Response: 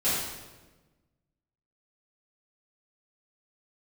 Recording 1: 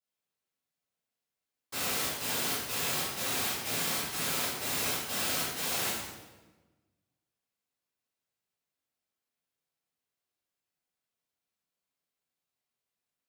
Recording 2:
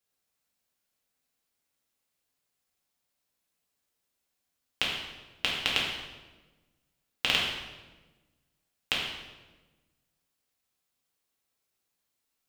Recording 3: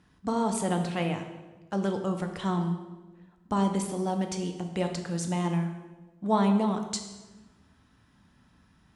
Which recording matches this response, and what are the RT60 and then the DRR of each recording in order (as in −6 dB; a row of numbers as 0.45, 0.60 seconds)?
1; 1.2, 1.2, 1.2 seconds; −14.5, −5.0, 4.5 decibels